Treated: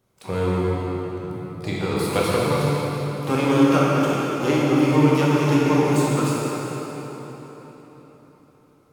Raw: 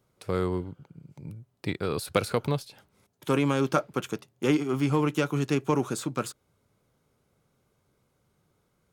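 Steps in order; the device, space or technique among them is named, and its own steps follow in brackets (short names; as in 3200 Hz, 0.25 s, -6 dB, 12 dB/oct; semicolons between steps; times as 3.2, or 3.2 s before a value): shimmer-style reverb (harmoniser +12 st -12 dB; reverb RT60 4.2 s, pre-delay 10 ms, DRR -6.5 dB)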